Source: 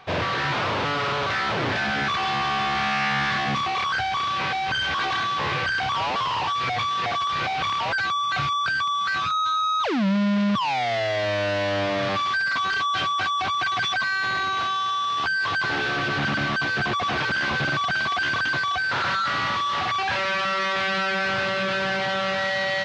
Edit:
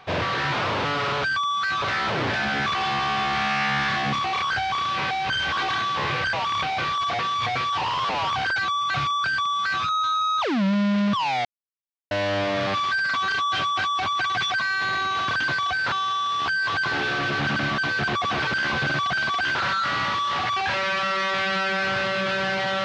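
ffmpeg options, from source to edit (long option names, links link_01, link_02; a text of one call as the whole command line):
ffmpeg -i in.wav -filter_complex "[0:a]asplit=10[link_01][link_02][link_03][link_04][link_05][link_06][link_07][link_08][link_09][link_10];[link_01]atrim=end=1.242[link_11];[link_02]atrim=start=8.678:end=9.262[link_12];[link_03]atrim=start=1.238:end=5.752[link_13];[link_04]atrim=start=5.748:end=7.922,asetpts=PTS-STARTPTS,areverse[link_14];[link_05]atrim=start=7.918:end=10.87,asetpts=PTS-STARTPTS,afade=type=out:start_time=2.948:duration=0.004:curve=hsin[link_15];[link_06]atrim=start=10.87:end=11.53,asetpts=PTS-STARTPTS,volume=0[link_16];[link_07]atrim=start=11.53:end=14.702,asetpts=PTS-STARTPTS,afade=type=in:duration=0.004:curve=hsin[link_17];[link_08]atrim=start=18.328:end=18.972[link_18];[link_09]atrim=start=14.698:end=18.332[link_19];[link_10]atrim=start=18.968[link_20];[link_11][link_12]acrossfade=duration=0.004:curve1=hsin:curve2=hsin[link_21];[link_21][link_13]acrossfade=duration=0.004:curve1=hsin:curve2=hsin[link_22];[link_22][link_14]acrossfade=duration=0.004:curve1=hsin:curve2=hsin[link_23];[link_15][link_16][link_17]concat=n=3:v=0:a=1[link_24];[link_23][link_24]acrossfade=duration=0.004:curve1=hsin:curve2=hsin[link_25];[link_25][link_18]acrossfade=duration=0.004:curve1=hsin:curve2=hsin[link_26];[link_26][link_19]acrossfade=duration=0.004:curve1=hsin:curve2=hsin[link_27];[link_27][link_20]acrossfade=duration=0.004:curve1=hsin:curve2=hsin" out.wav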